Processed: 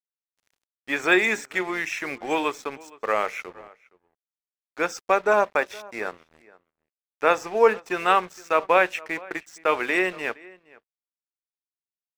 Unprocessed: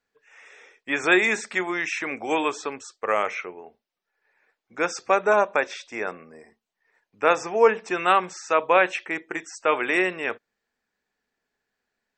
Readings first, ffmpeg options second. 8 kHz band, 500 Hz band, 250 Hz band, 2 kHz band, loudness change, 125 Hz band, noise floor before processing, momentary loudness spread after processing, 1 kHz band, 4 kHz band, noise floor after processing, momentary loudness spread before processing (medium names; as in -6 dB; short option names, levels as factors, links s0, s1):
-2.5 dB, -0.5 dB, -1.0 dB, -0.5 dB, -0.5 dB, -1.0 dB, -83 dBFS, 13 LU, -0.5 dB, -0.5 dB, under -85 dBFS, 13 LU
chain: -filter_complex "[0:a]aeval=exprs='sgn(val(0))*max(abs(val(0))-0.00794,0)':c=same,asplit=2[s0][s1];[s1]adelay=466.5,volume=0.0794,highshelf=f=4000:g=-10.5[s2];[s0][s2]amix=inputs=2:normalize=0"